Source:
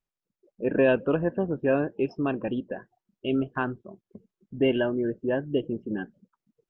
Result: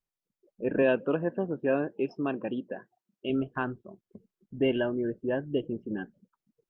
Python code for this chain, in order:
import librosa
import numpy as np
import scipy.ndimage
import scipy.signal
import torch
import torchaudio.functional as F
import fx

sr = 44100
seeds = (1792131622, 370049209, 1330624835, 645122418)

y = fx.highpass(x, sr, hz=150.0, slope=12, at=(0.82, 3.3))
y = y * librosa.db_to_amplitude(-3.0)